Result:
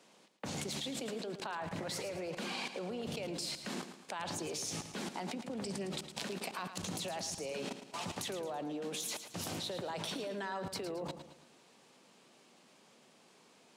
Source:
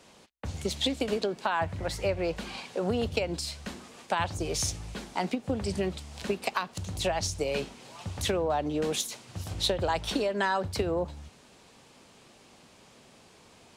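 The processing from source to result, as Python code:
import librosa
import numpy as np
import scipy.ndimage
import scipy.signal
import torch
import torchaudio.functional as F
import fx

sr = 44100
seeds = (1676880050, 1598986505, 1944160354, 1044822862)

y = scipy.signal.sosfilt(scipy.signal.butter(4, 160.0, 'highpass', fs=sr, output='sos'), x)
y = fx.level_steps(y, sr, step_db=24)
y = fx.echo_feedback(y, sr, ms=110, feedback_pct=43, wet_db=-10.0)
y = F.gain(torch.from_numpy(y), 8.0).numpy()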